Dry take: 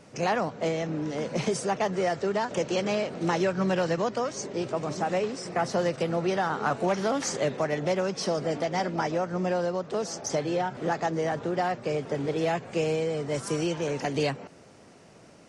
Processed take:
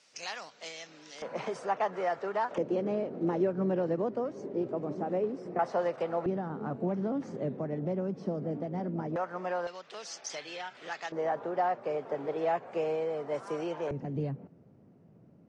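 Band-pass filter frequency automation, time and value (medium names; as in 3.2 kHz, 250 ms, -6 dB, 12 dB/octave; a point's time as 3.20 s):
band-pass filter, Q 1.1
4.6 kHz
from 1.22 s 1 kHz
from 2.58 s 320 Hz
from 5.59 s 810 Hz
from 6.26 s 210 Hz
from 9.16 s 1.1 kHz
from 9.67 s 3 kHz
from 11.12 s 800 Hz
from 13.91 s 150 Hz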